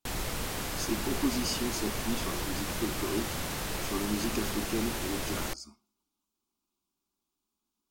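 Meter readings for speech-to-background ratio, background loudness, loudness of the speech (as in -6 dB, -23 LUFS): -1.0 dB, -34.5 LUFS, -35.5 LUFS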